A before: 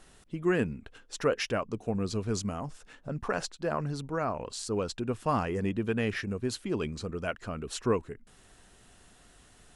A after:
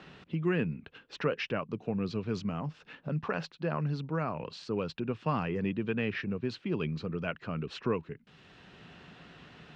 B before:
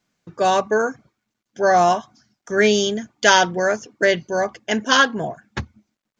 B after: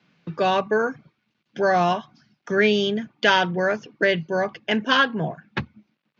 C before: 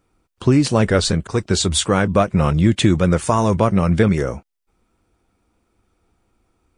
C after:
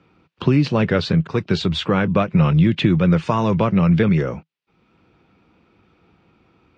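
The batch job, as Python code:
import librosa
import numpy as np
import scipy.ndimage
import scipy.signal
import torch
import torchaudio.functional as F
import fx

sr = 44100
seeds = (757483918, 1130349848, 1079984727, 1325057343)

y = fx.cabinet(x, sr, low_hz=100.0, low_slope=12, high_hz=4300.0, hz=(160.0, 690.0, 2600.0), db=(9, -3, 5))
y = fx.band_squash(y, sr, depth_pct=40)
y = F.gain(torch.from_numpy(y), -2.5).numpy()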